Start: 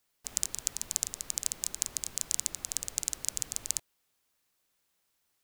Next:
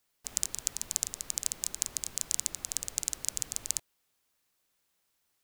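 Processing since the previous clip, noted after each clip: no audible change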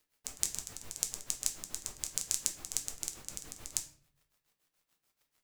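crackle 110 per s -58 dBFS; tremolo 6.9 Hz, depth 99%; simulated room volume 60 m³, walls mixed, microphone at 0.41 m

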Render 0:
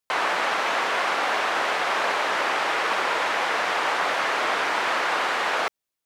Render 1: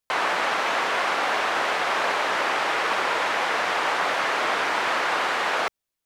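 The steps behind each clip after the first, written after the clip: bass shelf 98 Hz +8 dB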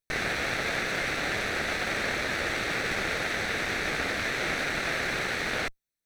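comb filter that takes the minimum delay 0.49 ms; trim -3.5 dB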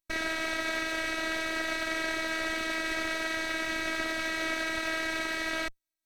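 robot voice 321 Hz

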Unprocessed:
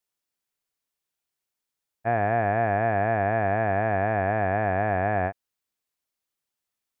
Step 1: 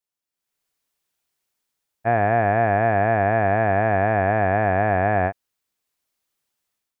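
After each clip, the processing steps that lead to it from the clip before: level rider gain up to 12 dB; trim -5 dB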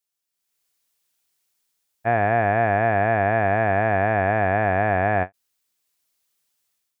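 treble shelf 2.5 kHz +8 dB; endings held to a fixed fall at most 480 dB/s; trim -1.5 dB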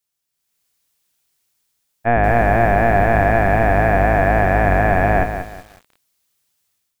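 octave divider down 1 oct, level +3 dB; bit-crushed delay 185 ms, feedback 35%, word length 7-bit, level -8.5 dB; trim +4 dB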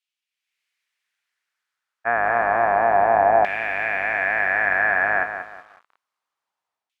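LFO band-pass saw down 0.29 Hz 820–2800 Hz; trim +4.5 dB

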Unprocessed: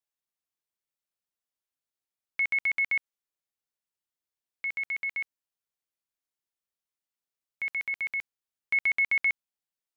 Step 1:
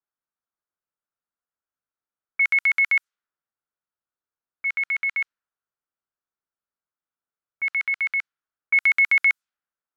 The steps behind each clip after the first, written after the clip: treble shelf 2.5 kHz +10 dB; level-controlled noise filter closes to 1 kHz, open at -21 dBFS; peaking EQ 1.4 kHz +11.5 dB 0.73 oct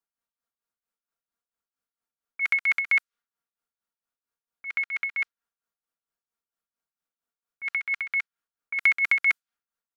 comb 4.3 ms, depth 50%; tremolo 4.4 Hz, depth 74%; trim +2 dB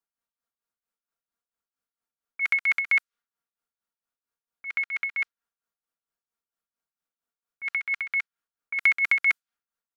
no audible change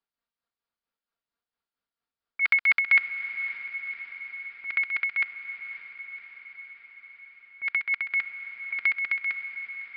fade out at the end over 2.31 s; echo that smears into a reverb 552 ms, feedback 66%, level -11 dB; resampled via 11.025 kHz; trim +2 dB

